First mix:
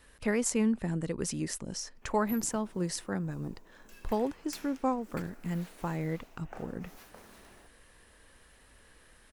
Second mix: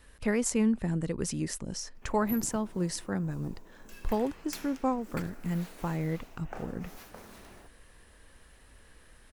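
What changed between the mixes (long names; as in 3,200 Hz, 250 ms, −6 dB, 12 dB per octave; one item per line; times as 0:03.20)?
background +4.0 dB
master: add low-shelf EQ 140 Hz +6 dB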